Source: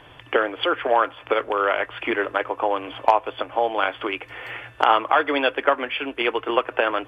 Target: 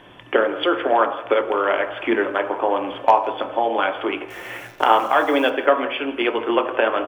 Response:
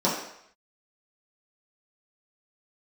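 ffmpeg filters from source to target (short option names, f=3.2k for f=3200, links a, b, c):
-filter_complex "[0:a]asettb=1/sr,asplit=3[a][b][c];[a]atrim=end=4.304[d];[b]atrim=start=4.3:end=5.5,asetpts=PTS-STARTPTS,afade=t=in:d=0.004:c=qsin,afade=t=out:st=1.196:d=0.004:c=qsin,acrusher=bits=8:dc=4:mix=0:aa=0.000001[e];[c]atrim=start=5.496[f];[d][e]acrossfade=d=0.004:c1=hsin:c2=qsin[g];[g][f]acrossfade=d=0.004:c1=qsin:c2=hsin,aecho=1:1:165|330|495|660:0.112|0.0539|0.0259|0.0124,asplit=2[h][i];[1:a]atrim=start_sample=2205,lowshelf=f=200:g=9.5[j];[i][j]afir=irnorm=-1:irlink=0,volume=-19dB[k];[h][k]amix=inputs=2:normalize=0,volume=-1dB"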